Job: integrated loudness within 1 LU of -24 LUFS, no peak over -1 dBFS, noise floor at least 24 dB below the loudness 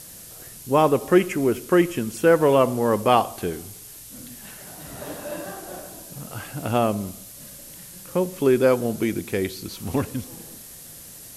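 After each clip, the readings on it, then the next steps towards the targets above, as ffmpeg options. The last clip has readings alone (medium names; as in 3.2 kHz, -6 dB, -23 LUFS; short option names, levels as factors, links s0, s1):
noise floor -42 dBFS; noise floor target -46 dBFS; loudness -22.0 LUFS; peak level -4.0 dBFS; loudness target -24.0 LUFS
-> -af "afftdn=nr=6:nf=-42"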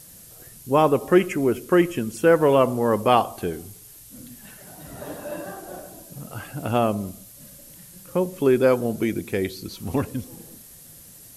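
noise floor -46 dBFS; loudness -22.0 LUFS; peak level -4.0 dBFS; loudness target -24.0 LUFS
-> -af "volume=0.794"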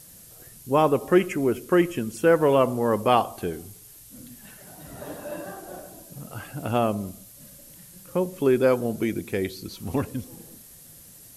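loudness -24.0 LUFS; peak level -6.0 dBFS; noise floor -48 dBFS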